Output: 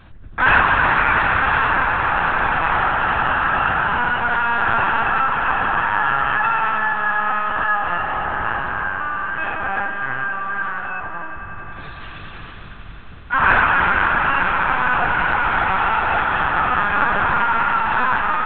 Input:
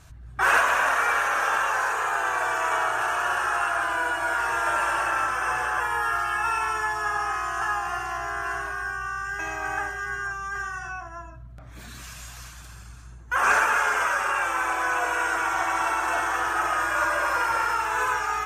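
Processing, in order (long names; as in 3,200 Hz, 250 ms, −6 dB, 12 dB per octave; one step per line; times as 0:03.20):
notch filter 470 Hz, Q 12
linear-prediction vocoder at 8 kHz pitch kept
on a send: echo that builds up and dies away 92 ms, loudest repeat 5, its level −16 dB
on the sum: level +6 dB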